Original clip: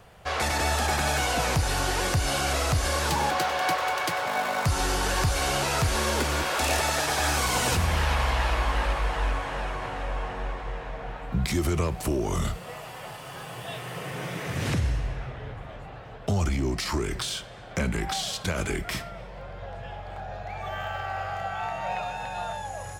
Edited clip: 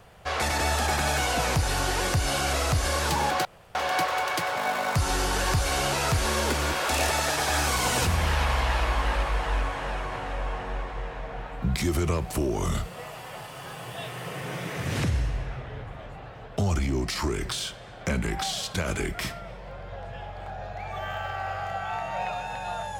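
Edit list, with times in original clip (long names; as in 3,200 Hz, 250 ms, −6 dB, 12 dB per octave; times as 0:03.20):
0:03.45: splice in room tone 0.30 s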